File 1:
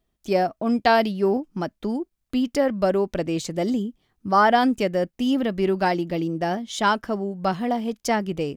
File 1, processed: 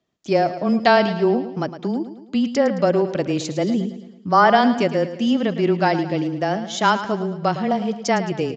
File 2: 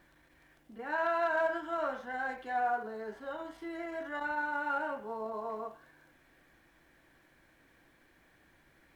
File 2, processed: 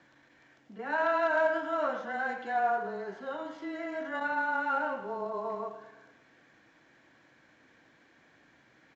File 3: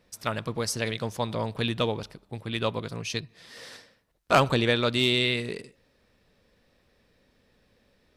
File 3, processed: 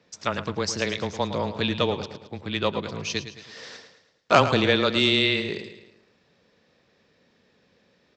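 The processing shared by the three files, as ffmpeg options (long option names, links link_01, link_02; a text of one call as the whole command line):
ffmpeg -i in.wav -filter_complex "[0:a]afreqshift=-15,asplit=2[link_01][link_02];[link_02]aecho=0:1:109|218|327|436|545:0.251|0.123|0.0603|0.0296|0.0145[link_03];[link_01][link_03]amix=inputs=2:normalize=0,aresample=16000,aresample=44100,highpass=120,volume=3dB" out.wav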